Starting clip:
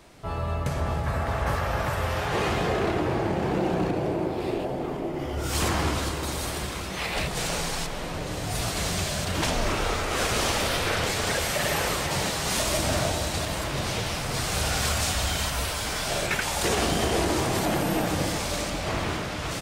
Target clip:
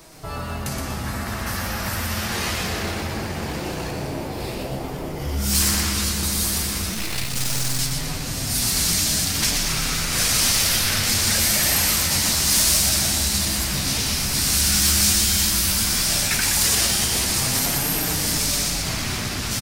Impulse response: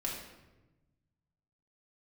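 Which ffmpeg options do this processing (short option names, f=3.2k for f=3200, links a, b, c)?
-filter_complex "[0:a]asubboost=boost=4:cutoff=140,acrossover=split=1500[a][b];[a]alimiter=level_in=2dB:limit=-24dB:level=0:latency=1:release=298,volume=-2dB[c];[b]aexciter=amount=3.3:drive=1.4:freq=4.4k[d];[c][d]amix=inputs=2:normalize=0,asettb=1/sr,asplit=3[e][f][g];[e]atrim=end=6.944[h];[f]atrim=start=6.94:end=7.79,asetpts=PTS-STARTPTS,afade=t=in:d=0.004:c=qsin,afade=t=out:st=0.846:d=0.004:c=qsin,aeval=exprs='max(val(0),0)':c=same[i];[g]atrim=start=7.786[j];[h][i]acrossfade=d=0.004:c1=hsin:c2=qsin[k];[k][j]acrossfade=d=0.004:c1=qsin:c2=hsin,flanger=delay=6.1:depth=9.2:regen=55:speed=0.11:shape=triangular,aeval=exprs='0.112*(abs(mod(val(0)/0.112+3,4)-2)-1)':c=same,asplit=2[l][m];[m]asplit=4[n][o][p][q];[n]adelay=121,afreqshift=130,volume=-5dB[r];[o]adelay=242,afreqshift=260,volume=-15.2dB[s];[p]adelay=363,afreqshift=390,volume=-25.3dB[t];[q]adelay=484,afreqshift=520,volume=-35.5dB[u];[r][s][t][u]amix=inputs=4:normalize=0[v];[l][v]amix=inputs=2:normalize=0,volume=8dB"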